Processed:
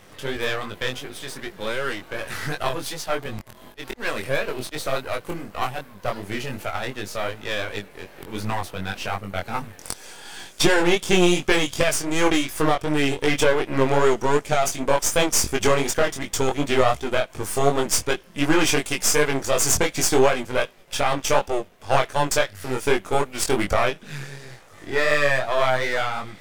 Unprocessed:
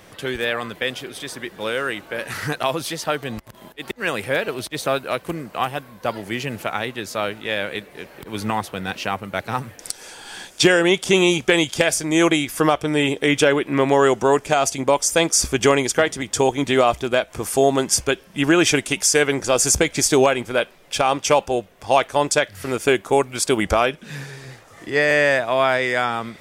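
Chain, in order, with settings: half-wave gain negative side -12 dB; chorus 2.7 Hz, delay 19.5 ms, depth 3.9 ms; 2.69–3.26 three-band expander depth 40%; gain +4 dB

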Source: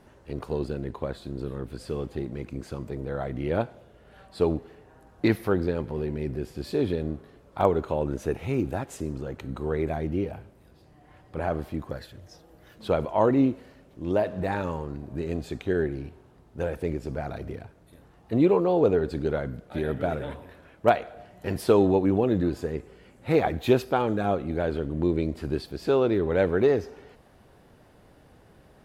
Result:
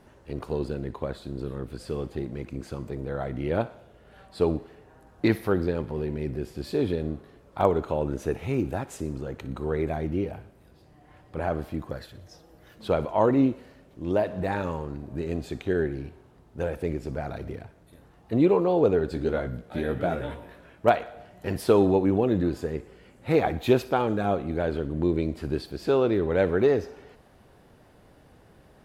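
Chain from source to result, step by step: 19.09–20.87 doubler 17 ms -6 dB; thinning echo 60 ms, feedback 58%, level -18 dB

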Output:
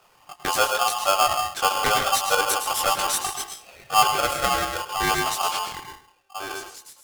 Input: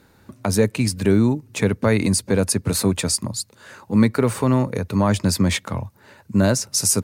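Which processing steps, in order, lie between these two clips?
ending faded out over 2.15 s; chorus voices 4, 0.42 Hz, delay 21 ms, depth 3.3 ms; reverb removal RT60 1.9 s; 1.78–2.41 ripple EQ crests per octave 0.81, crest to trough 10 dB; on a send at -4 dB: reverb RT60 0.50 s, pre-delay 0.102 s; on the sum: polarity switched at an audio rate 970 Hz

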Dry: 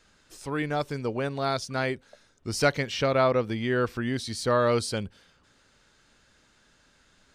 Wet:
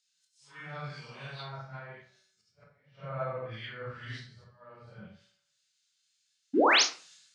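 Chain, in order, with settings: phase scrambler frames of 0.2 s; weighting filter ITU-R 468; treble ducked by the level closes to 970 Hz, closed at -23.5 dBFS; resonant low shelf 210 Hz +11 dB, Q 3; in parallel at -0.5 dB: compressor, threshold -36 dBFS, peak gain reduction 14.5 dB; on the sum: auto swell 0.432 s; upward compressor, threshold -48 dBFS; resonator 190 Hz, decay 1.6 s, mix 70%; painted sound rise, 6.53–6.83, 230–7100 Hz -27 dBFS; on a send at -1 dB: reverb RT60 0.55 s, pre-delay 21 ms; on the sum: three-band expander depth 100%; gain -6 dB

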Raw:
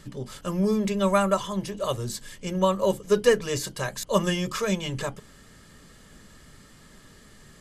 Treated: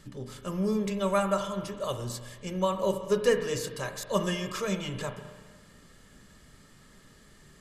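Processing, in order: spring tank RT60 1.5 s, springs 33/41 ms, chirp 60 ms, DRR 7.5 dB; gain -5 dB

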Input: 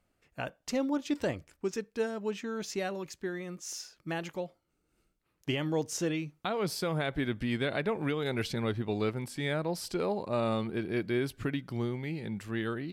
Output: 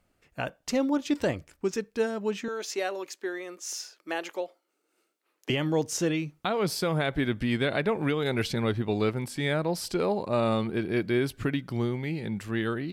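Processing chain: 2.48–5.5 HPF 330 Hz 24 dB/oct; gain +4.5 dB

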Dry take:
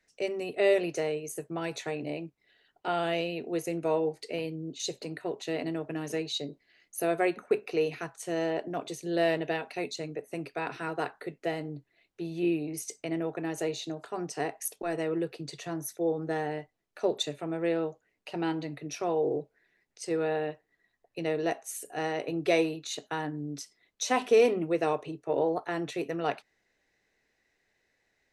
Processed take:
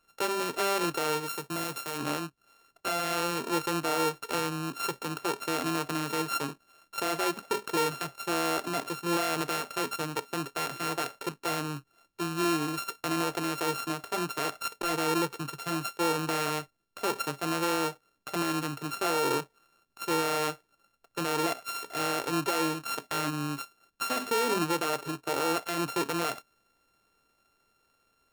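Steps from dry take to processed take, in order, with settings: sample sorter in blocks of 32 samples; 1.26–1.98 high shelf 6500 Hz +6.5 dB; limiter -24 dBFS, peak gain reduction 11.5 dB; gain +3.5 dB

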